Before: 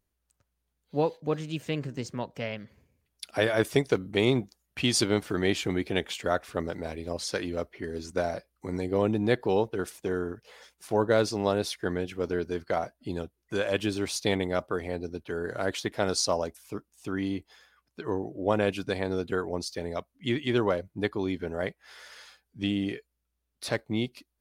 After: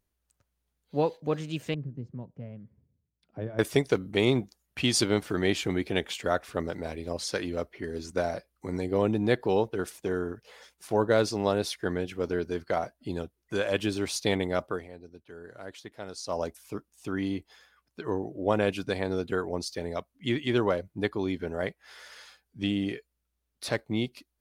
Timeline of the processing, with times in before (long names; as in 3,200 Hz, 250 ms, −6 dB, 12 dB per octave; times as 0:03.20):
0:01.74–0:03.59: resonant band-pass 130 Hz, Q 1.1
0:14.69–0:16.43: duck −13 dB, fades 0.19 s